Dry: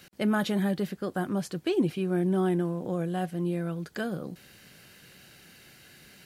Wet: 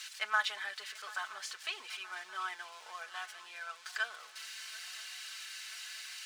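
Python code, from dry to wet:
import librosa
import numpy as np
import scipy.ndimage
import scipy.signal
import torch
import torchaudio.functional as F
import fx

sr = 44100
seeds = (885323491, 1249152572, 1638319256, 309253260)

y = x + 0.5 * 10.0 ** (-32.0 / 20.0) * np.diff(np.sign(x), prepend=np.sign(x[:1]))
y = scipy.signal.sosfilt(scipy.signal.butter(4, 1100.0, 'highpass', fs=sr, output='sos'), y)
y = fx.air_absorb(y, sr, metres=110.0)
y = y + 0.71 * np.pad(y, (int(4.6 * sr / 1000.0), 0))[:len(y)]
y = fx.echo_swing(y, sr, ms=976, ratio=3, feedback_pct=62, wet_db=-20.0)
y = y * 10.0 ** (1.5 / 20.0)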